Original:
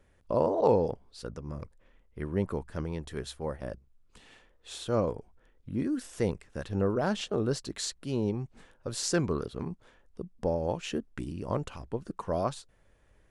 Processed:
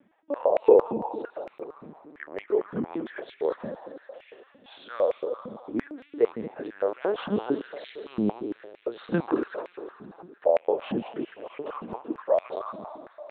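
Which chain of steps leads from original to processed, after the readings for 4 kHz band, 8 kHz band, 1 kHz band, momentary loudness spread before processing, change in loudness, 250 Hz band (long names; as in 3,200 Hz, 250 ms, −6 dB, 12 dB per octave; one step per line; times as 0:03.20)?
−7.5 dB, below −35 dB, +2.5 dB, 15 LU, +3.5 dB, +1.5 dB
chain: high-shelf EQ 3,100 Hz −8 dB
echo machine with several playback heads 75 ms, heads second and third, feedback 61%, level −10.5 dB
linear-prediction vocoder at 8 kHz pitch kept
high-pass on a step sequencer 8.8 Hz 210–2,300 Hz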